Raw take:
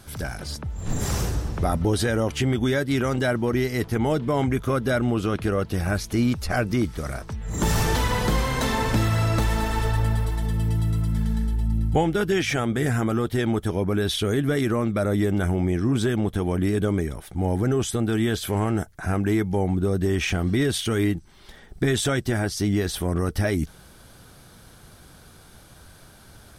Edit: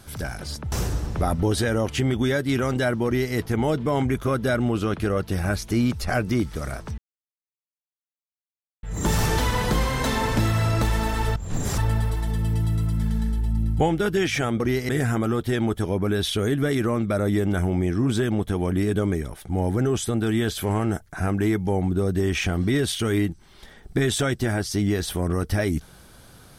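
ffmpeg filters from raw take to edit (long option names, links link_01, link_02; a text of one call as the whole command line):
ffmpeg -i in.wav -filter_complex "[0:a]asplit=7[link_01][link_02][link_03][link_04][link_05][link_06][link_07];[link_01]atrim=end=0.722[link_08];[link_02]atrim=start=1.138:end=7.4,asetpts=PTS-STARTPTS,afade=type=out:start_time=6.258:duration=0.004:curve=hsin,apad=pad_dur=1.85[link_09];[link_03]atrim=start=7.4:end=9.932,asetpts=PTS-STARTPTS,afade=type=in:duration=0.004:curve=hsin[link_10];[link_04]atrim=start=0.718:end=1.142[link_11];[link_05]atrim=start=9.928:end=12.752[link_12];[link_06]atrim=start=3.478:end=3.772[link_13];[link_07]atrim=start=12.748[link_14];[link_09][link_10]concat=n=2:v=0:a=1[link_15];[link_08][link_15]acrossfade=duration=0.004:curve1=hsin:curve2=hsin[link_16];[link_16][link_11]acrossfade=duration=0.004:curve1=hsin:curve2=hsin[link_17];[link_17][link_12]acrossfade=duration=0.004:curve1=hsin:curve2=hsin[link_18];[link_18][link_13]acrossfade=duration=0.004:curve1=hsin:curve2=hsin[link_19];[link_19][link_14]acrossfade=duration=0.004:curve1=hsin:curve2=hsin" out.wav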